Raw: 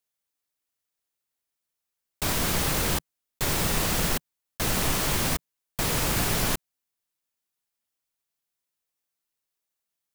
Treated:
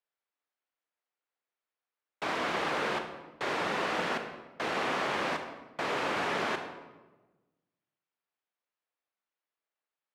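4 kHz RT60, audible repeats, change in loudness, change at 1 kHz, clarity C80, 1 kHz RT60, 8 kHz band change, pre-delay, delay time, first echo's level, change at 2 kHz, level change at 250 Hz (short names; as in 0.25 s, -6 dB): 0.75 s, none, -6.5 dB, +1.0 dB, 9.0 dB, 1.1 s, -21.0 dB, 27 ms, none, none, -1.0 dB, -7.0 dB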